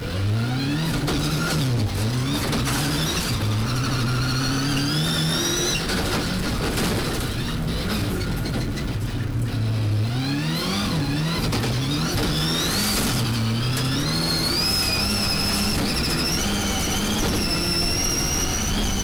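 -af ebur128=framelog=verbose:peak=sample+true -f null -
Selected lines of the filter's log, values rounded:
Integrated loudness:
  I:         -22.4 LUFS
  Threshold: -32.4 LUFS
Loudness range:
  LRA:         3.9 LU
  Threshold: -42.4 LUFS
  LRA low:   -24.8 LUFS
  LRA high:  -20.9 LUFS
Sample peak:
  Peak:      -12.1 dBFS
True peak:
  Peak:      -11.9 dBFS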